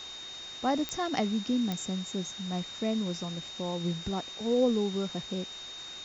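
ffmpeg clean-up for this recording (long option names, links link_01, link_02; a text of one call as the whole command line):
ffmpeg -i in.wav -af "adeclick=threshold=4,bandreject=frequency=376.2:width_type=h:width=4,bandreject=frequency=752.4:width_type=h:width=4,bandreject=frequency=1128.6:width_type=h:width=4,bandreject=frequency=1504.8:width_type=h:width=4,bandreject=frequency=3700:width=30,afftdn=noise_reduction=30:noise_floor=-43" out.wav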